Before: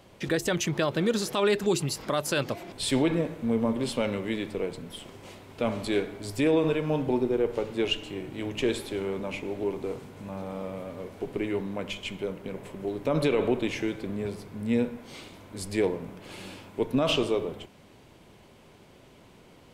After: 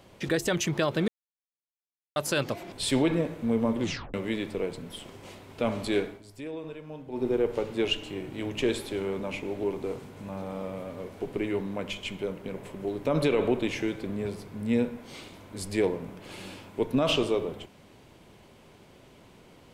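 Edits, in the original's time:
0:01.08–0:02.16: silence
0:03.80: tape stop 0.34 s
0:06.06–0:07.28: duck −14.5 dB, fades 0.17 s

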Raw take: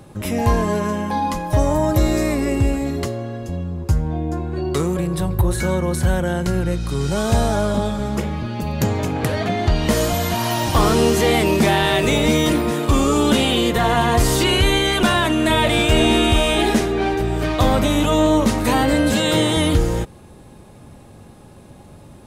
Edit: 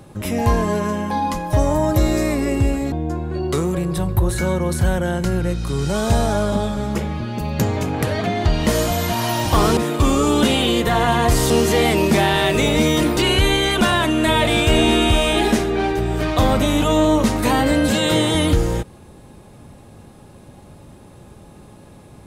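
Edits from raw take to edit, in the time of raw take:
0:02.92–0:04.14: remove
0:10.99–0:12.66: move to 0:14.39

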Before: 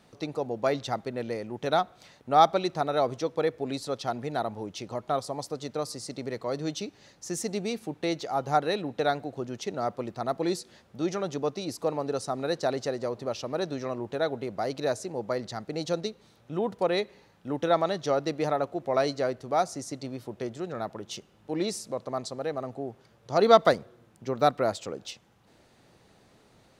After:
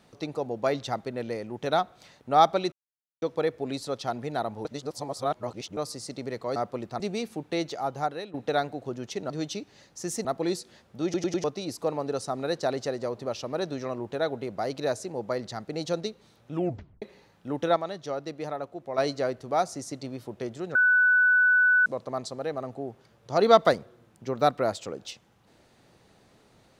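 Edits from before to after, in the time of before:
0:02.72–0:03.22: silence
0:04.65–0:05.77: reverse
0:06.56–0:07.51: swap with 0:09.81–0:10.25
0:08.24–0:08.85: fade out, to −14 dB
0:11.04: stutter in place 0.10 s, 4 plays
0:16.54: tape stop 0.48 s
0:17.76–0:18.98: clip gain −6.5 dB
0:20.75–0:21.86: beep over 1,490 Hz −17 dBFS

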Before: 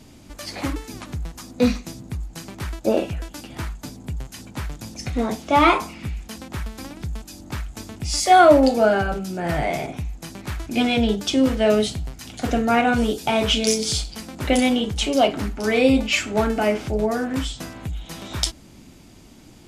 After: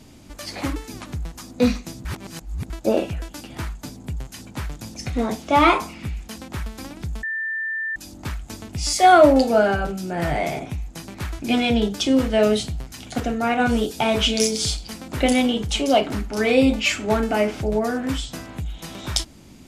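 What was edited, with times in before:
0:02.05–0:02.70: reverse
0:07.23: insert tone 1,780 Hz −23.5 dBFS 0.73 s
0:12.47–0:12.86: clip gain −3.5 dB

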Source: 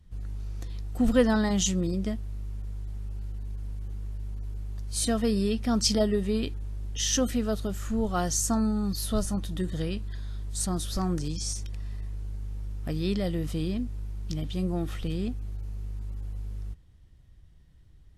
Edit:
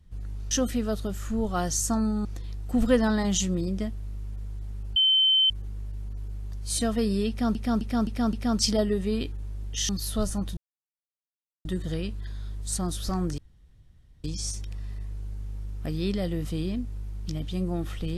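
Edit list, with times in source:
0:03.22–0:03.76: beep over 3,080 Hz −17.5 dBFS
0:05.55–0:05.81: repeat, 5 plays
0:07.11–0:08.85: move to 0:00.51
0:09.53: splice in silence 1.08 s
0:11.26: splice in room tone 0.86 s

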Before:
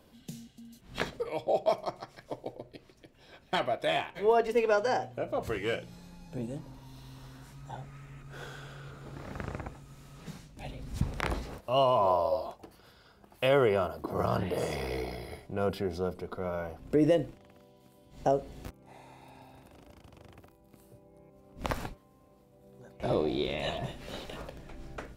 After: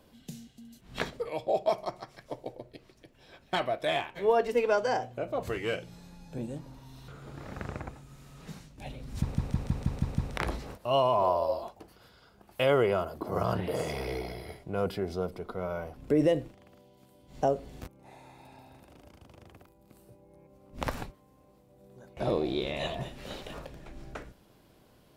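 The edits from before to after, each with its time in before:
0:07.08–0:08.87: remove
0:11.00: stutter 0.16 s, 7 plays

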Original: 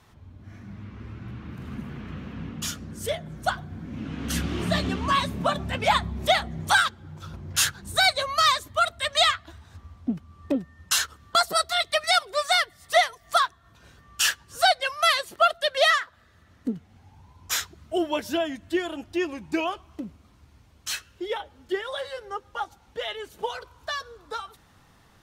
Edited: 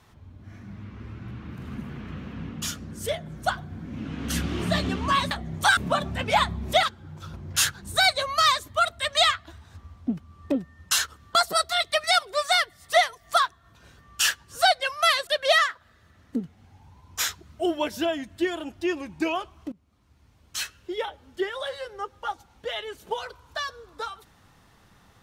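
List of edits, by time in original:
0:06.37–0:06.83: move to 0:05.31
0:15.27–0:15.59: remove
0:20.04–0:20.93: fade in, from −20.5 dB

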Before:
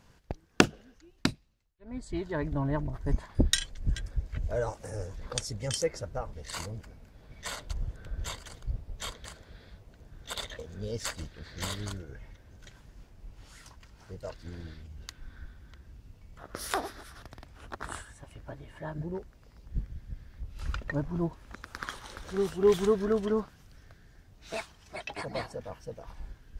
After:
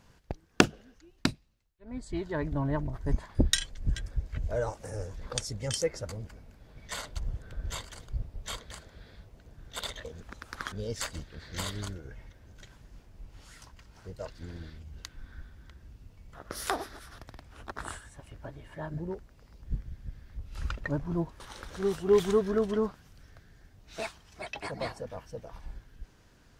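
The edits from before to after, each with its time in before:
0:06.09–0:06.63: remove
0:21.44–0:21.94: move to 0:10.76

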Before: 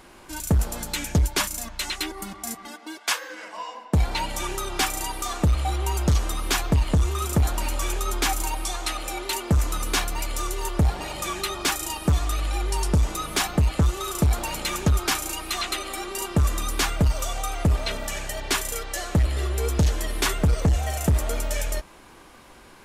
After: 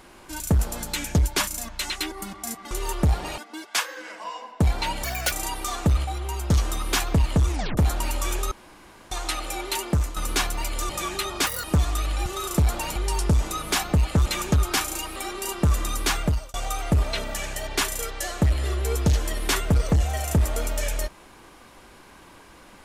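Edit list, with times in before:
0:04.37–0:04.89: play speed 190%
0:05.62–0:06.08: clip gain −4.5 dB
0:07.07: tape stop 0.28 s
0:08.09–0:08.69: fill with room tone
0:09.35–0:09.74: fade out equal-power, to −10.5 dB
0:10.47–0:11.14: move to 0:02.71
0:11.71–0:11.98: play speed 154%
0:13.90–0:14.60: move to 0:12.60
0:15.50–0:15.89: remove
0:16.95–0:17.27: fade out

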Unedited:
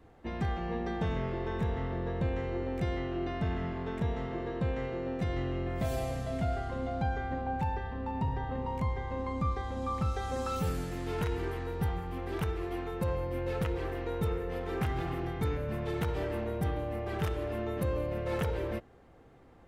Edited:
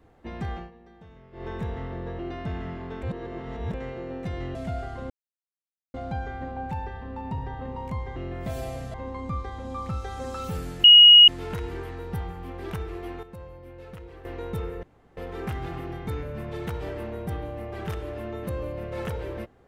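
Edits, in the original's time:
0:00.57–0:01.46: duck −18 dB, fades 0.14 s
0:02.19–0:03.15: remove
0:03.99–0:04.70: reverse
0:05.51–0:06.29: move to 0:09.06
0:06.84: splice in silence 0.84 s
0:10.96: insert tone 2,890 Hz −7.5 dBFS 0.44 s
0:12.91–0:13.93: clip gain −10.5 dB
0:14.51: splice in room tone 0.34 s

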